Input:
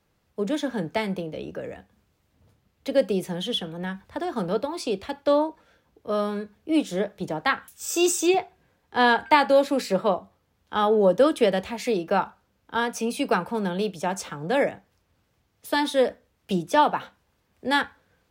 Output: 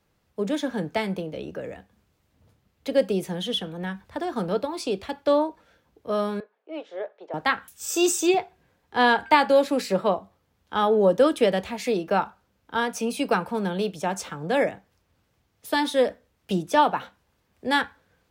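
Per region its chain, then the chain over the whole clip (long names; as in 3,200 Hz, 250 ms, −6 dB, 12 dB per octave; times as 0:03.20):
0:06.40–0:07.34: high-pass filter 480 Hz 24 dB per octave + head-to-tape spacing loss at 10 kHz 40 dB
whole clip: no processing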